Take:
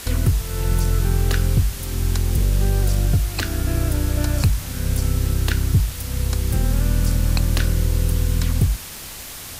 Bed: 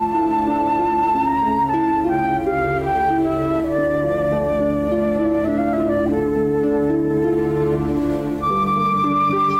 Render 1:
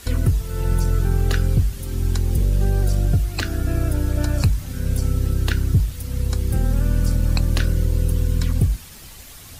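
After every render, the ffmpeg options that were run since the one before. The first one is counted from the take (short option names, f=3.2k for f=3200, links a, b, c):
-af "afftdn=nr=9:nf=-35"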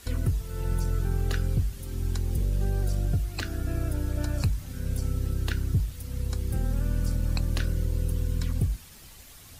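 -af "volume=-8dB"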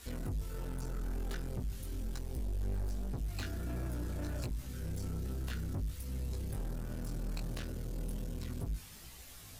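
-af "asoftclip=type=tanh:threshold=-32dB,flanger=delay=15.5:depth=4.5:speed=1.3"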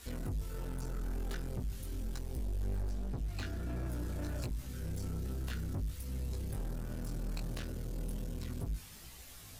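-filter_complex "[0:a]asettb=1/sr,asplit=3[a][b][c];[a]atrim=end=2.824[d];[b]atrim=start=2.82:end=3.88,asetpts=PTS-STARTPTS,afade=t=in:d=0.004:c=qsin,afade=t=out:st=1.056:d=0.004:c=qsin,highshelf=f=7.1k:g=-7[e];[c]atrim=start=3.876[f];[d][e]acrossfade=d=0.004:c1=hsin:c2=qsin[g];[g][f]acrossfade=d=0.004:c1=qsin:c2=hsin"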